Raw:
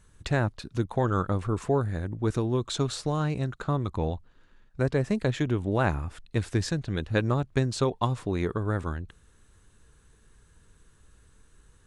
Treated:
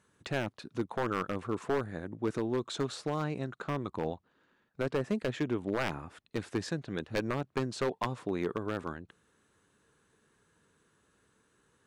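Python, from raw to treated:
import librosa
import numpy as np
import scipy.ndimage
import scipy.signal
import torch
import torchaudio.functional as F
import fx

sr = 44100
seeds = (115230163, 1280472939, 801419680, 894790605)

y = scipy.signal.sosfilt(scipy.signal.butter(2, 200.0, 'highpass', fs=sr, output='sos'), x)
y = fx.high_shelf(y, sr, hz=3700.0, db=-7.5)
y = 10.0 ** (-19.5 / 20.0) * (np.abs((y / 10.0 ** (-19.5 / 20.0) + 3.0) % 4.0 - 2.0) - 1.0)
y = y * librosa.db_to_amplitude(-2.5)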